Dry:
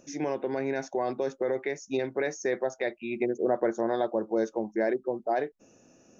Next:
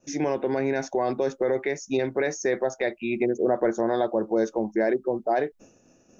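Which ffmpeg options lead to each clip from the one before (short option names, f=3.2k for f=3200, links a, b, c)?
-filter_complex "[0:a]agate=range=-33dB:threshold=-52dB:ratio=3:detection=peak,lowshelf=f=61:g=10,asplit=2[a][b];[b]alimiter=limit=-24dB:level=0:latency=1:release=45,volume=0dB[c];[a][c]amix=inputs=2:normalize=0"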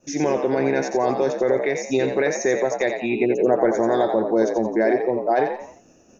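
-filter_complex "[0:a]asplit=5[a][b][c][d][e];[b]adelay=87,afreqshift=65,volume=-6.5dB[f];[c]adelay=174,afreqshift=130,volume=-15.1dB[g];[d]adelay=261,afreqshift=195,volume=-23.8dB[h];[e]adelay=348,afreqshift=260,volume=-32.4dB[i];[a][f][g][h][i]amix=inputs=5:normalize=0,volume=4dB"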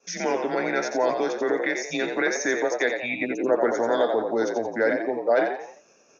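-af "afreqshift=-110,highpass=550,lowpass=6.2k,volume=2.5dB"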